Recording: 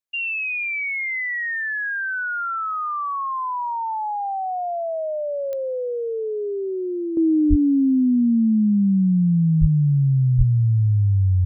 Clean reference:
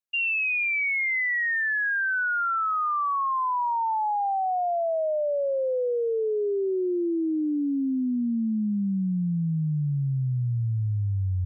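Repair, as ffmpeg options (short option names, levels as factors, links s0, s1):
-filter_complex "[0:a]adeclick=t=4,asplit=3[s0][s1][s2];[s0]afade=t=out:st=7.49:d=0.02[s3];[s1]highpass=f=140:w=0.5412,highpass=f=140:w=1.3066,afade=t=in:st=7.49:d=0.02,afade=t=out:st=7.61:d=0.02[s4];[s2]afade=t=in:st=7.61:d=0.02[s5];[s3][s4][s5]amix=inputs=3:normalize=0,asplit=3[s6][s7][s8];[s6]afade=t=out:st=9.6:d=0.02[s9];[s7]highpass=f=140:w=0.5412,highpass=f=140:w=1.3066,afade=t=in:st=9.6:d=0.02,afade=t=out:st=9.72:d=0.02[s10];[s8]afade=t=in:st=9.72:d=0.02[s11];[s9][s10][s11]amix=inputs=3:normalize=0,asplit=3[s12][s13][s14];[s12]afade=t=out:st=10.37:d=0.02[s15];[s13]highpass=f=140:w=0.5412,highpass=f=140:w=1.3066,afade=t=in:st=10.37:d=0.02,afade=t=out:st=10.49:d=0.02[s16];[s14]afade=t=in:st=10.49:d=0.02[s17];[s15][s16][s17]amix=inputs=3:normalize=0,asetnsamples=n=441:p=0,asendcmd='7.17 volume volume -8.5dB',volume=1"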